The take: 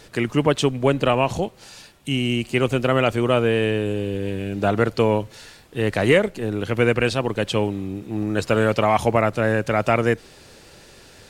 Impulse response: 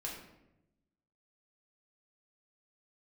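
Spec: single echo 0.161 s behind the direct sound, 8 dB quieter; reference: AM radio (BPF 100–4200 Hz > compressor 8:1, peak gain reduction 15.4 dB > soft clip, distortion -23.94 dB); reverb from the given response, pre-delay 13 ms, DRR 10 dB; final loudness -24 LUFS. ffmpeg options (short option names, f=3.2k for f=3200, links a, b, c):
-filter_complex "[0:a]aecho=1:1:161:0.398,asplit=2[a][b];[1:a]atrim=start_sample=2205,adelay=13[c];[b][c]afir=irnorm=-1:irlink=0,volume=-10dB[d];[a][d]amix=inputs=2:normalize=0,highpass=100,lowpass=4.2k,acompressor=threshold=-26dB:ratio=8,asoftclip=threshold=-17.5dB,volume=7.5dB"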